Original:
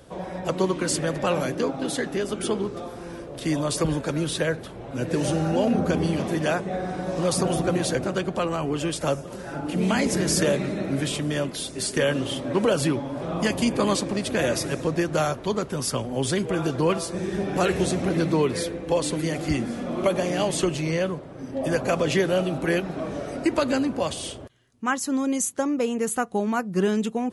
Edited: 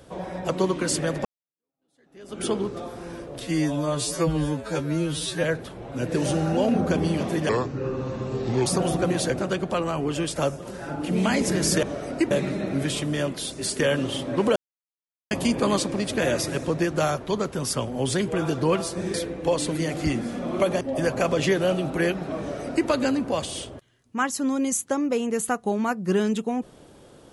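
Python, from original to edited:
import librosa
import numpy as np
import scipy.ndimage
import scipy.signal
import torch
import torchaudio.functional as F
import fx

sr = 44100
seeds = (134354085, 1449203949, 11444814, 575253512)

y = fx.edit(x, sr, fx.fade_in_span(start_s=1.25, length_s=1.17, curve='exp'),
    fx.stretch_span(start_s=3.42, length_s=1.01, factor=2.0),
    fx.speed_span(start_s=6.48, length_s=0.83, speed=0.71),
    fx.silence(start_s=12.73, length_s=0.75),
    fx.cut(start_s=17.31, length_s=1.27),
    fx.cut(start_s=20.25, length_s=1.24),
    fx.duplicate(start_s=23.08, length_s=0.48, to_s=10.48), tone=tone)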